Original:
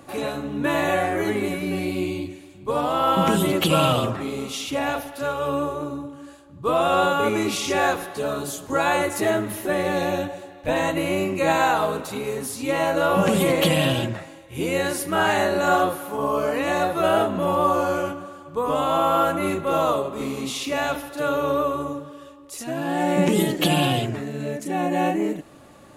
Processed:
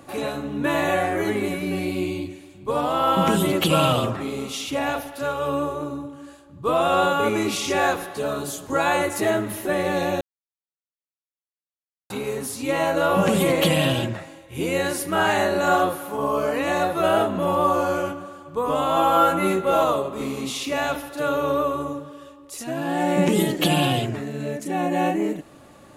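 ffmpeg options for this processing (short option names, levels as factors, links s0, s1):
-filter_complex "[0:a]asettb=1/sr,asplit=3[s0][s1][s2];[s0]atrim=end=18.954[s3];[s1]atrim=start=18.95:end=19.84,asetpts=PTS-STARTPTS,afade=t=in:d=0.004:c=qsin,afade=t=out:st=0.886:d=0.004:c=qsin,asplit=2[s4][s5];[s5]adelay=16,volume=0.794[s6];[s4][s6]amix=inputs=2:normalize=0,atrim=end_sample=39249[s7];[s2]atrim=start=19.836[s8];[s3][s7]acrossfade=d=0.004:c1=hsin:c2=qsin[s9];[s9][s8]acrossfade=d=0.004:c1=qsin:c2=hsin,asplit=3[s10][s11][s12];[s10]atrim=end=10.21,asetpts=PTS-STARTPTS,afade=t=out:st=10.206:d=0.004:c=hsin[s13];[s11]atrim=start=10.21:end=12.1,asetpts=PTS-STARTPTS,volume=0[s14];[s12]atrim=start=12.1,asetpts=PTS-STARTPTS,afade=t=in:d=0.004:c=hsin[s15];[s13][s14][s15]concat=n=3:v=0:a=1"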